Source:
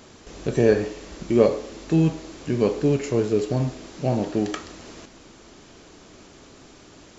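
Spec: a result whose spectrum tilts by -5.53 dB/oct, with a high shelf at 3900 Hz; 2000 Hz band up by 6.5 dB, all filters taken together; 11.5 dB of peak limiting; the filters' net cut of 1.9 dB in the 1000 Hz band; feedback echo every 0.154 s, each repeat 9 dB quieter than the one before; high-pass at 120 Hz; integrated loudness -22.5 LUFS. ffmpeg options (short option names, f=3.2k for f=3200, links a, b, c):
-af "highpass=120,equalizer=f=1k:t=o:g=-5,equalizer=f=2k:t=o:g=8,highshelf=f=3.9k:g=6,alimiter=limit=-15dB:level=0:latency=1,aecho=1:1:154|308|462|616:0.355|0.124|0.0435|0.0152,volume=4.5dB"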